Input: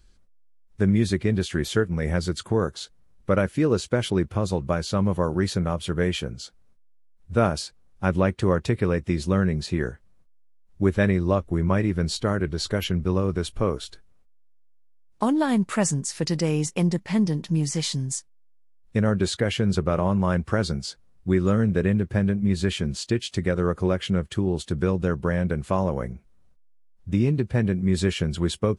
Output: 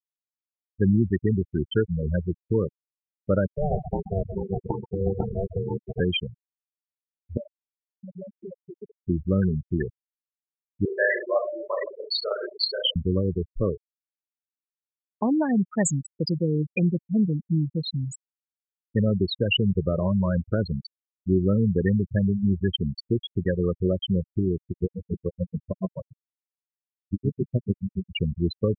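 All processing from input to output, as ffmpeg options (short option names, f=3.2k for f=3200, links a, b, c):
-filter_complex "[0:a]asettb=1/sr,asplit=3[a][b][c];[a]atrim=end=3.564[d];[b]atrim=start=3.56:end=6,asetpts=PTS-STARTPTS,afade=t=in:d=0.004:c=qsin,afade=t=out:st=2.436:d=0.004:c=qsin,bandreject=f=520:w=15,aeval=exprs='val(0)*sin(2*PI*290*n/s)':c=same,aecho=1:1:131|262|393:0.447|0.107|0.0257,atrim=end_sample=107604[e];[c]atrim=start=5.996[f];[d][e]acrossfade=d=0.004:c1=hsin:c2=qsin[g];[g][f]acrossfade=d=0.004:c1=qsin:c2=hsin,asettb=1/sr,asplit=3[h][i][j];[h]atrim=end=7.374[k];[i]atrim=start=7.37:end=9.06,asetpts=PTS-STARTPTS,afade=t=in:d=0.004:c=qsin,afade=t=out:st=1.686:d=0.004:c=qsin,acompressor=threshold=-34dB:ratio=2.5:attack=3.2:release=140:knee=1:detection=peak,highpass=170,aecho=1:1:5.1:0.44,atrim=end_sample=74529[l];[j]atrim=start=9.056[m];[k][l]acrossfade=d=0.004:c1=hsin:c2=qsin[n];[n][m]acrossfade=d=0.004:c1=qsin:c2=hsin,asettb=1/sr,asplit=3[o][p][q];[o]atrim=end=10.854[r];[p]atrim=start=10.85:end=12.96,asetpts=PTS-STARTPTS,afade=t=in:d=0.004:c=qsin,afade=t=out:st=2.106:d=0.004:c=qsin,highpass=f=470:w=0.5412,highpass=f=470:w=1.3066,aecho=1:1:30|66|109.2|161|223.2|297.9|387.5|495:0.794|0.631|0.501|0.398|0.316|0.251|0.2|0.158,atrim=end_sample=93051[s];[q]atrim=start=12.956[t];[r][s]acrossfade=d=0.004:c1=hsin:c2=qsin[u];[u][t]acrossfade=d=0.004:c1=qsin:c2=hsin,asettb=1/sr,asplit=3[v][w][x];[v]atrim=end=24.564[y];[w]atrim=start=24.56:end=28.11,asetpts=PTS-STARTPTS,afade=t=in:d=0.004:c=qsin,afade=t=out:st=3.546:d=0.004:c=qsin,aecho=1:1:89|178|267|356|445|534|623:0.531|0.281|0.149|0.079|0.0419|0.0222|0.0118,atrim=end_sample=156555,aeval=exprs='val(0)*pow(10,-30*(0.5-0.5*cos(2*PI*7*n/s))/20)':c=same[z];[x]atrim=start=28.106[aa];[y][z]acrossfade=d=0.004:c1=hsin:c2=qsin[ab];[ab][aa]acrossfade=d=0.004:c1=qsin:c2=hsin,afftfilt=real='re*gte(hypot(re,im),0.178)':imag='im*gte(hypot(re,im),0.178)':win_size=1024:overlap=0.75,highshelf=f=1.7k:t=q:w=3:g=9.5"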